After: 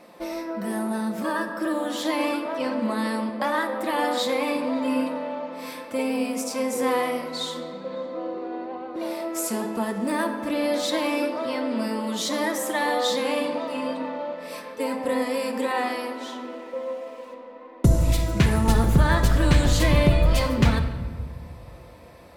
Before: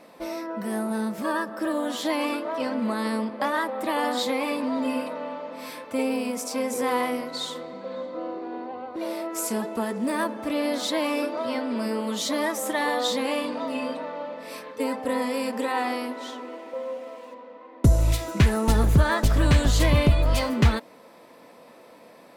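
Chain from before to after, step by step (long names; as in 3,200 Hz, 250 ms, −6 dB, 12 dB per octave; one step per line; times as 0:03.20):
rectangular room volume 1,500 cubic metres, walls mixed, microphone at 0.89 metres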